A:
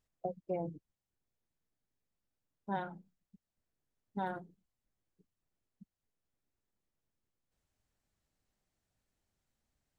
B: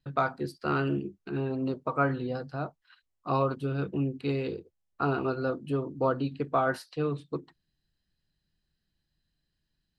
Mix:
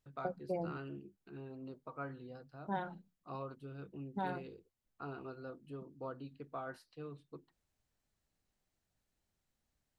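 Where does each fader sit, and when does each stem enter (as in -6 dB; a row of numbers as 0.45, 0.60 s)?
-1.0, -17.5 dB; 0.00, 0.00 s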